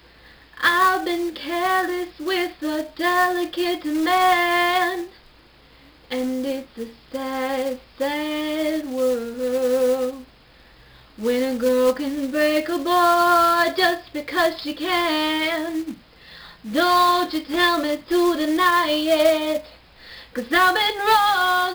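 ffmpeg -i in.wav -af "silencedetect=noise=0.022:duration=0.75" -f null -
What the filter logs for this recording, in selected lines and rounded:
silence_start: 5.06
silence_end: 6.11 | silence_duration: 1.04
silence_start: 10.22
silence_end: 11.18 | silence_duration: 0.97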